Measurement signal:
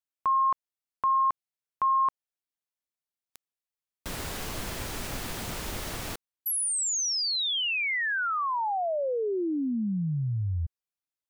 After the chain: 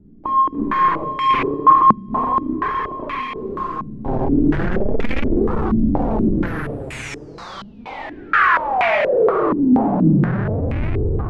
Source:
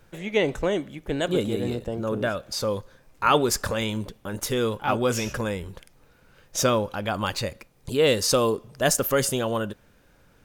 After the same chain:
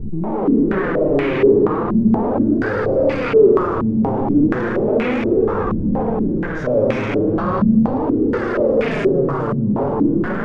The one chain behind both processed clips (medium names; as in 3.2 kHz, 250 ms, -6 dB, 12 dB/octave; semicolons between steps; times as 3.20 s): spectral sustain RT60 1.78 s; resonant low shelf 540 Hz +13.5 dB, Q 1.5; hum notches 60/120/180/240/300/360/420/480/540 Hz; reverse; compression, threshold -22 dBFS; reverse; peak limiter -17.5 dBFS; Schroeder reverb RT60 2.6 s, combs from 28 ms, DRR -2.5 dB; power-law waveshaper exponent 0.35; flange 0.36 Hz, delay 2.1 ms, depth 5.7 ms, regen +36%; step-sequenced low-pass 4.2 Hz 210–2300 Hz; trim -2.5 dB